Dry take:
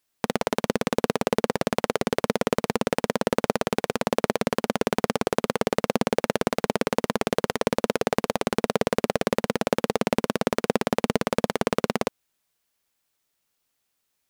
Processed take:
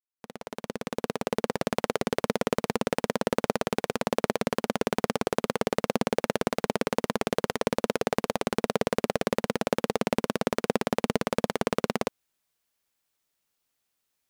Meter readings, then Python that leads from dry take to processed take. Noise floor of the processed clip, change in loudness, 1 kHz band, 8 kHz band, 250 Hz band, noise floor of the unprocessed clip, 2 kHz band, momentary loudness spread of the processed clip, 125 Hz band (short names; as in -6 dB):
-80 dBFS, -3.0 dB, -3.5 dB, -3.5 dB, -3.5 dB, -77 dBFS, -3.5 dB, 3 LU, -3.5 dB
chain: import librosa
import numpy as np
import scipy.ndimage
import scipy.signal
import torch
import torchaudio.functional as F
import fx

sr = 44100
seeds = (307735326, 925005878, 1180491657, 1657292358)

y = fx.fade_in_head(x, sr, length_s=1.74)
y = y * 10.0 ** (-3.0 / 20.0)